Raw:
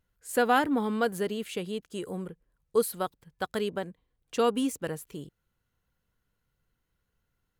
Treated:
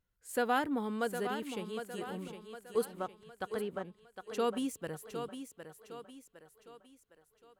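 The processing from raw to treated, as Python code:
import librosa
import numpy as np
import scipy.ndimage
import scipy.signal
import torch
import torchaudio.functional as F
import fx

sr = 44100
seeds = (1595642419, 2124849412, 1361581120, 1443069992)

p1 = fx.env_lowpass_down(x, sr, base_hz=2300.0, full_db=-28.5, at=(2.84, 4.38), fade=0.02)
p2 = p1 + fx.echo_thinned(p1, sr, ms=759, feedback_pct=46, hz=190.0, wet_db=-8.0, dry=0)
y = p2 * librosa.db_to_amplitude(-7.0)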